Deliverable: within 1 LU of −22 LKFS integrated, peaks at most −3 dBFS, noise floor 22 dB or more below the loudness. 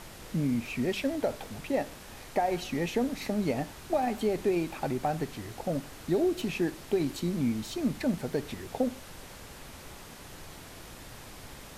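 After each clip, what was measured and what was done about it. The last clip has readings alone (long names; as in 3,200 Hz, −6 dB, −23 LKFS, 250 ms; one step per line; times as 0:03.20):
background noise floor −47 dBFS; target noise floor −54 dBFS; integrated loudness −31.5 LKFS; sample peak −16.5 dBFS; target loudness −22.0 LKFS
→ noise reduction from a noise print 7 dB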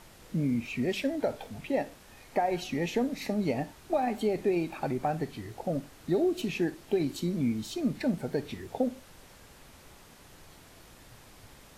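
background noise floor −54 dBFS; integrated loudness −31.5 LKFS; sample peak −16.5 dBFS; target loudness −22.0 LKFS
→ level +9.5 dB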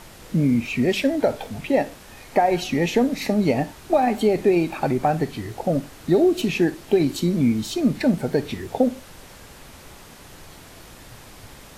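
integrated loudness −22.0 LKFS; sample peak −7.0 dBFS; background noise floor −45 dBFS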